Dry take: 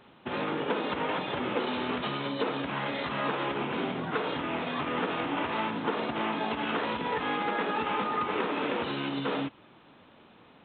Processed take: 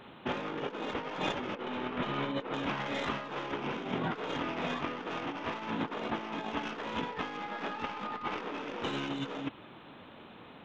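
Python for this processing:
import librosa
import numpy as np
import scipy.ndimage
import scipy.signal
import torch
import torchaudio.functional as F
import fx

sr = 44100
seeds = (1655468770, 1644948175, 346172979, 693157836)

y = fx.tracing_dist(x, sr, depth_ms=0.049)
y = fx.lowpass(y, sr, hz=3000.0, slope=12, at=(1.55, 2.54))
y = fx.peak_eq(y, sr, hz=410.0, db=-6.0, octaves=0.47, at=(7.41, 8.42))
y = fx.over_compress(y, sr, threshold_db=-35.0, ratio=-0.5)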